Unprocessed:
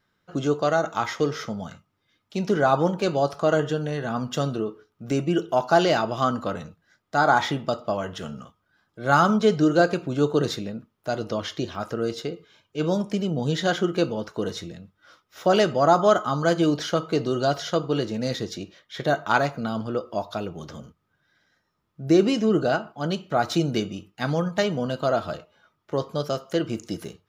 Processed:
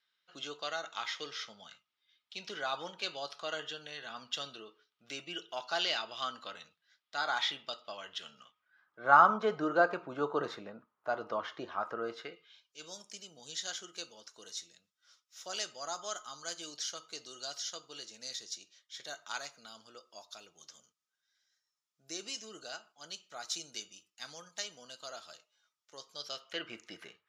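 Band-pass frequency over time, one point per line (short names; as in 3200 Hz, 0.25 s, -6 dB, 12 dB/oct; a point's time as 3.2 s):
band-pass, Q 1.7
8.37 s 3500 Hz
9.06 s 1100 Hz
12.09 s 1100 Hz
12.78 s 6600 Hz
26.07 s 6600 Hz
26.67 s 2000 Hz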